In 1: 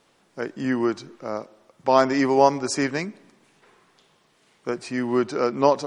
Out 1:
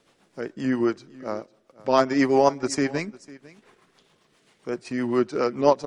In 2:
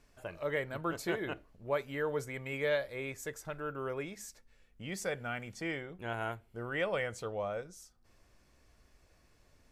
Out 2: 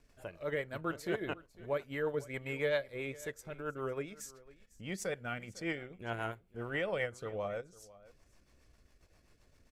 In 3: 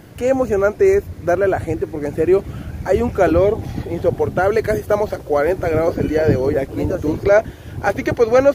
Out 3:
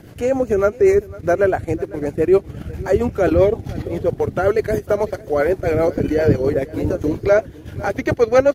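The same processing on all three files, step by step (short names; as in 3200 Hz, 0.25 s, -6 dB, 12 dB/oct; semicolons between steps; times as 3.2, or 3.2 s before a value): transient shaper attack -3 dB, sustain -8 dB; rotary speaker horn 7.5 Hz; echo 0.501 s -20.5 dB; gain +2.5 dB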